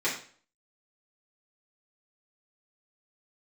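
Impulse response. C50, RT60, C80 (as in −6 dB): 6.5 dB, 0.45 s, 10.5 dB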